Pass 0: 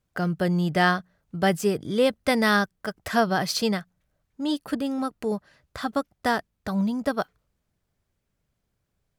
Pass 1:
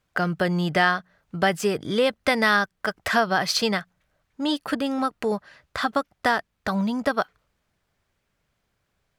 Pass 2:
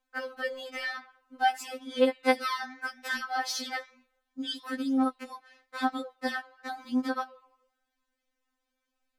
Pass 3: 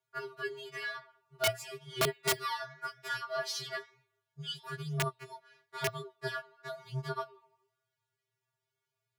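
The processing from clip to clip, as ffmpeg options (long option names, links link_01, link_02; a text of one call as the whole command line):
ffmpeg -i in.wav -af "equalizer=frequency=1800:width=0.3:gain=9.5,acompressor=threshold=-21dB:ratio=2" out.wav
ffmpeg -i in.wav -af "flanger=delay=9.8:depth=6.8:regen=-89:speed=1:shape=triangular,afftfilt=real='re*3.46*eq(mod(b,12),0)':imag='im*3.46*eq(mod(b,12),0)':win_size=2048:overlap=0.75,volume=-1dB" out.wav
ffmpeg -i in.wav -af "aeval=exprs='(mod(7.08*val(0)+1,2)-1)/7.08':channel_layout=same,afreqshift=-120,lowshelf=frequency=140:gain=-10.5,volume=-4dB" out.wav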